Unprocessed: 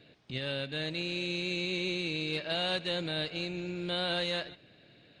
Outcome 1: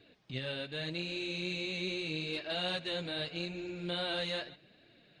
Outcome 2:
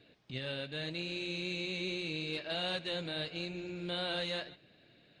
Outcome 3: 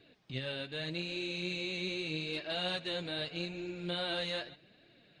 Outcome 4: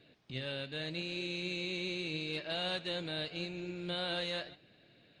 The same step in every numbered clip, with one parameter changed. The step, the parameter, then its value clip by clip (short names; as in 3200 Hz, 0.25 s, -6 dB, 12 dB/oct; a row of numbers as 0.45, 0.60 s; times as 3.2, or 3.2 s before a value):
flange, regen: -13, -57, +28, +79%